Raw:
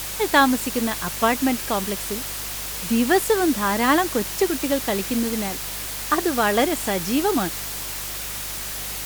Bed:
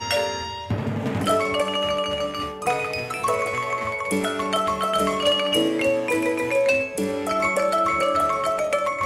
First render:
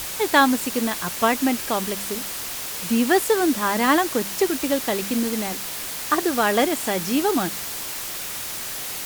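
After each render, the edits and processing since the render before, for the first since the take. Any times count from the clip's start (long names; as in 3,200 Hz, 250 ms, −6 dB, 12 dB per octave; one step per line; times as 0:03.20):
hum removal 50 Hz, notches 4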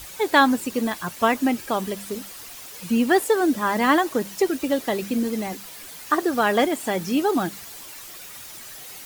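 broadband denoise 11 dB, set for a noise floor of −31 dBFS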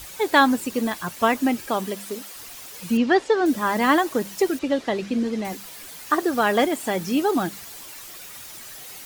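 0:01.68–0:02.34: high-pass filter 100 Hz → 330 Hz
0:02.97–0:03.46: low-pass filter 5,600 Hz 24 dB per octave
0:04.59–0:05.45: low-pass filter 5,200 Hz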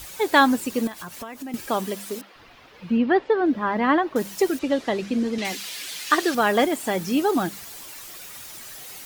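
0:00.87–0:01.54: downward compressor 8 to 1, threshold −32 dBFS
0:02.21–0:04.16: high-frequency loss of the air 330 metres
0:05.38–0:06.35: meter weighting curve D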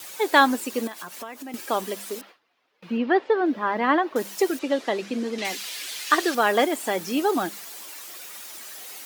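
noise gate with hold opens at −35 dBFS
high-pass filter 290 Hz 12 dB per octave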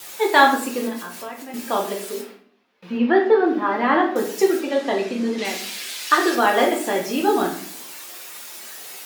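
rectangular room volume 72 cubic metres, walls mixed, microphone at 0.78 metres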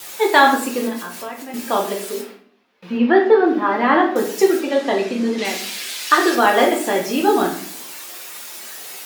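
level +3 dB
brickwall limiter −1 dBFS, peak gain reduction 2.5 dB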